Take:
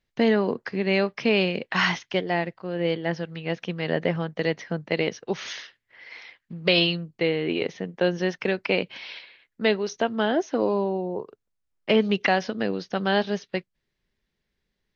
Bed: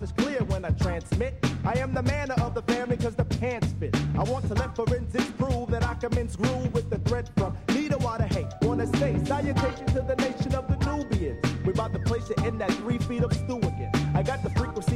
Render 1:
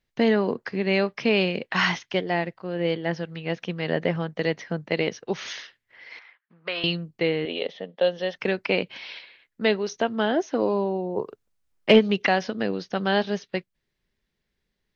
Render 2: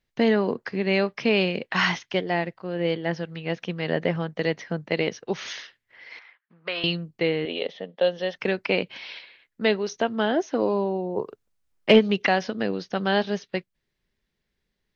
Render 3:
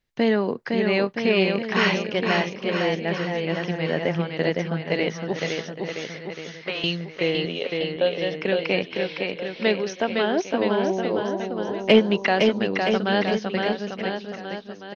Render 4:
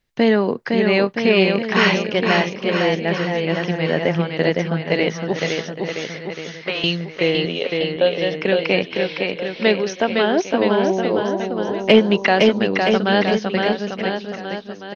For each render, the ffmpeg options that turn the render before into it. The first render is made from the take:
ffmpeg -i in.wav -filter_complex "[0:a]asettb=1/sr,asplit=3[link_01][link_02][link_03];[link_01]atrim=end=6.194[link_04];[link_02]atrim=start=6.19:end=6.84,asetpts=PTS-STARTPTS,afade=type=in:duration=0.004:curve=qsin,afade=type=out:start_time=0.646:duration=0.004:curve=qsin,bandpass=frequency=1300:width_type=q:width=1.6[link_05];[link_03]atrim=start=6.836[link_06];[link_04][link_05]acrossfade=duration=0.004:curve1=hsin:curve2=qsin[link_07];[link_07][link_06]acrossfade=duration=0.004:curve1=qsin:curve2=hsin,asettb=1/sr,asplit=3[link_08][link_09][link_10];[link_08]atrim=end=7.454[link_11];[link_09]atrim=start=7.45:end=8.36,asetpts=PTS-STARTPTS,afade=type=in:duration=0.004:curve=qsin,afade=type=out:start_time=0.906:duration=0.004:curve=qsin,highpass=310,equalizer=frequency=350:width_type=q:width=4:gain=-9,equalizer=frequency=570:width_type=q:width=4:gain=6,equalizer=frequency=1000:width_type=q:width=4:gain=-5,equalizer=frequency=1500:width_type=q:width=4:gain=-7,equalizer=frequency=2300:width_type=q:width=4:gain=-6,equalizer=frequency=3400:width_type=q:width=4:gain=9,lowpass=frequency=4500:width=0.5412,lowpass=frequency=4500:width=1.3066[link_12];[link_10]atrim=start=8.356[link_13];[link_11][link_12]acrossfade=duration=0.004:curve1=hsin:curve2=qsin[link_14];[link_14][link_13]acrossfade=duration=0.004:curve1=qsin:curve2=hsin,asplit=3[link_15][link_16][link_17];[link_15]afade=type=out:start_time=11.16:duration=0.02[link_18];[link_16]acontrast=47,afade=type=in:start_time=11.16:duration=0.02,afade=type=out:start_time=11.98:duration=0.02[link_19];[link_17]afade=type=in:start_time=11.98:duration=0.02[link_20];[link_18][link_19][link_20]amix=inputs=3:normalize=0" out.wav
ffmpeg -i in.wav -af anull out.wav
ffmpeg -i in.wav -af "aecho=1:1:510|969|1382|1754|2089:0.631|0.398|0.251|0.158|0.1" out.wav
ffmpeg -i in.wav -af "volume=5dB,alimiter=limit=-2dB:level=0:latency=1" out.wav

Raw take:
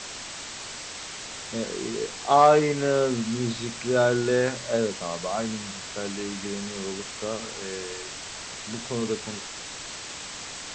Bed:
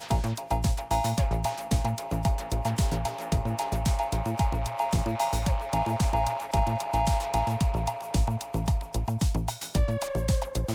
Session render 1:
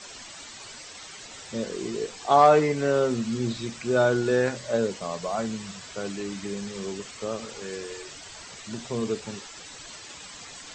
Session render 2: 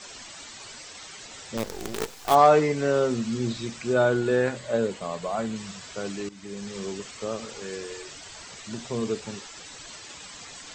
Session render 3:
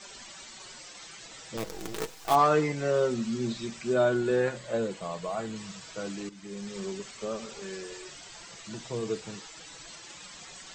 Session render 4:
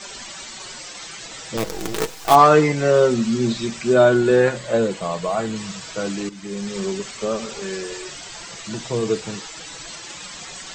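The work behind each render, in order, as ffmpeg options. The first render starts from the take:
ffmpeg -i in.wav -af "afftdn=noise_reduction=10:noise_floor=-38" out.wav
ffmpeg -i in.wav -filter_complex "[0:a]asettb=1/sr,asplit=3[link_01][link_02][link_03];[link_01]atrim=end=1.574[link_04];[link_02]atrim=start=1.57:end=2.35,asetpts=PTS-STARTPTS,afade=type=in:duration=0.004:curve=qsin,afade=type=out:start_time=0.776:duration=0.004:curve=qsin,acrusher=bits=5:dc=4:mix=0:aa=0.000001[link_05];[link_03]atrim=start=2.346[link_06];[link_04][link_05]acrossfade=duration=0.004:curve1=hsin:curve2=qsin[link_07];[link_07][link_06]acrossfade=duration=0.004:curve1=qsin:curve2=hsin,asettb=1/sr,asplit=3[link_08][link_09][link_10];[link_08]atrim=end=3.934[link_11];[link_09]atrim=start=3.93:end=5.56,asetpts=PTS-STARTPTS,afade=type=in:duration=0.004:curve=qsin,afade=type=out:start_time=1.626:duration=0.004:curve=qsin,equalizer=frequency=5600:width_type=o:width=0.53:gain=-8.5[link_12];[link_10]atrim=start=5.556[link_13];[link_11][link_12]acrossfade=duration=0.004:curve1=hsin:curve2=qsin[link_14];[link_14][link_13]acrossfade=duration=0.004:curve1=qsin:curve2=hsin,asplit=2[link_15][link_16];[link_15]atrim=end=6.29,asetpts=PTS-STARTPTS,afade=type=out:start_time=6.286:duration=0.004:curve=hsin:silence=0.158489[link_17];[link_16]atrim=start=6.29,asetpts=PTS-STARTPTS,afade=type=in:duration=0.45:silence=0.158489[link_18];[link_17][link_18]concat=n=2:v=0:a=1" out.wav
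ffmpeg -i in.wav -af "flanger=delay=5.1:depth=1.2:regen=-25:speed=0.27:shape=sinusoidal,asoftclip=type=hard:threshold=-13dB" out.wav
ffmpeg -i in.wav -af "volume=10.5dB" out.wav

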